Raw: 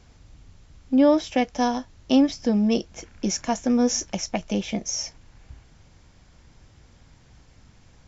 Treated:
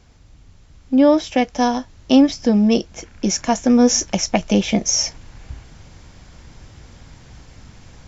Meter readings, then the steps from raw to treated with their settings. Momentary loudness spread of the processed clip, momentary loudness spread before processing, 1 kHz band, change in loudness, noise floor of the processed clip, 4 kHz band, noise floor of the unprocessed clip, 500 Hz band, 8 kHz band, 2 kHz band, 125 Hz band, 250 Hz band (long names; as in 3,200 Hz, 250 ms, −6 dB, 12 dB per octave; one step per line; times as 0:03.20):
8 LU, 10 LU, +5.5 dB, +6.0 dB, −48 dBFS, +8.0 dB, −55 dBFS, +5.5 dB, can't be measured, +6.5 dB, +7.5 dB, +6.0 dB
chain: speech leveller 2 s
level +6.5 dB